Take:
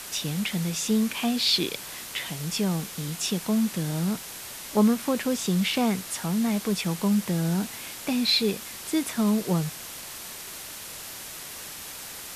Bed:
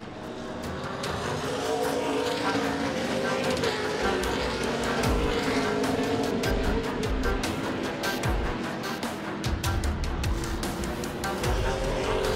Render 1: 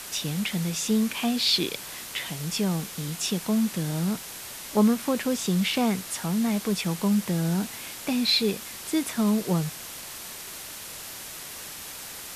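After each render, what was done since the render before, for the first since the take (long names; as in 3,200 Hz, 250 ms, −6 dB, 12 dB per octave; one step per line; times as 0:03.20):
no processing that can be heard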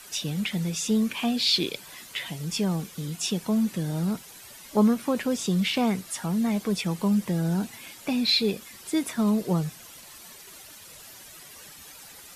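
broadband denoise 11 dB, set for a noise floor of −40 dBFS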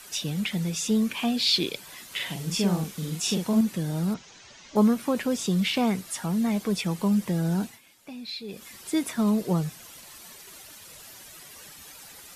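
0:02.07–0:03.61: double-tracking delay 45 ms −2.5 dB
0:04.14–0:04.76: elliptic low-pass filter 6,500 Hz, stop band 80 dB
0:07.63–0:08.66: duck −14 dB, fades 0.18 s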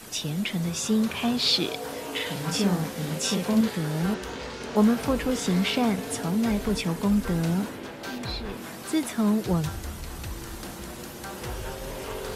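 mix in bed −8 dB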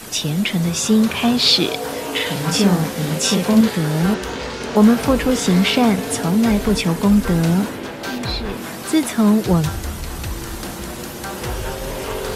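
level +9 dB
brickwall limiter −3 dBFS, peak gain reduction 2.5 dB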